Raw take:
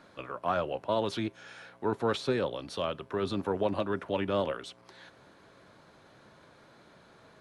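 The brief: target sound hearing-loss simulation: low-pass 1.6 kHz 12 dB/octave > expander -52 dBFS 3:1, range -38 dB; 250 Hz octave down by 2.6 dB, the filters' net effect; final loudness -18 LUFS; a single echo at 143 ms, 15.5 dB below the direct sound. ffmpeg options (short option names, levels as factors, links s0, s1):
-af "lowpass=1600,equalizer=f=250:t=o:g=-3.5,aecho=1:1:143:0.168,agate=range=0.0126:threshold=0.00251:ratio=3,volume=5.96"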